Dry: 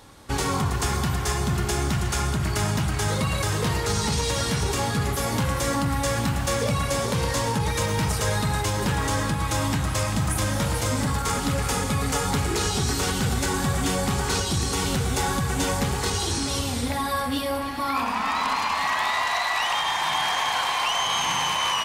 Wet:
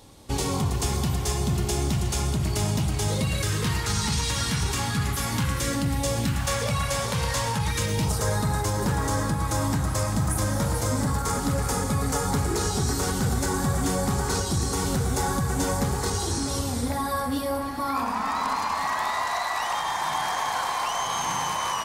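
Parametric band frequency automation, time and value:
parametric band −10.5 dB 1.1 octaves
0:03.12 1,500 Hz
0:03.79 510 Hz
0:05.36 510 Hz
0:06.16 1,700 Hz
0:06.47 320 Hz
0:07.56 320 Hz
0:08.22 2,800 Hz

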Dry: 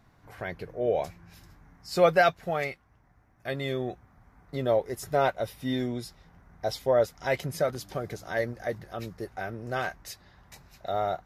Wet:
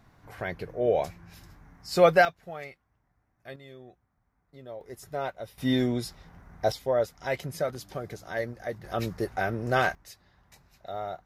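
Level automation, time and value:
+2 dB
from 0:02.25 −10 dB
from 0:03.56 −17 dB
from 0:04.81 −8 dB
from 0:05.58 +4.5 dB
from 0:06.72 −2.5 dB
from 0:08.84 +6.5 dB
from 0:09.95 −6.5 dB

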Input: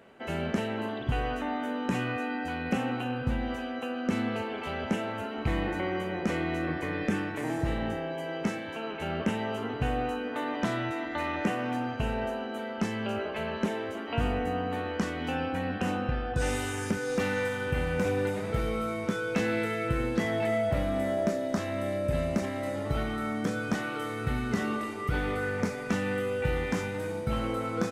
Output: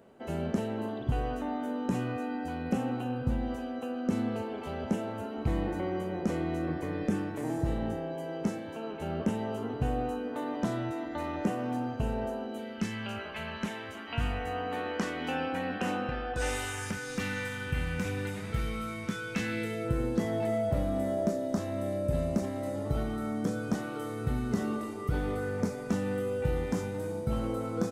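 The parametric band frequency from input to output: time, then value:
parametric band −11 dB 1.9 octaves
0:12.43 2,200 Hz
0:13.02 430 Hz
0:14.27 430 Hz
0:14.88 75 Hz
0:16.10 75 Hz
0:17.20 570 Hz
0:19.48 570 Hz
0:19.88 2,200 Hz

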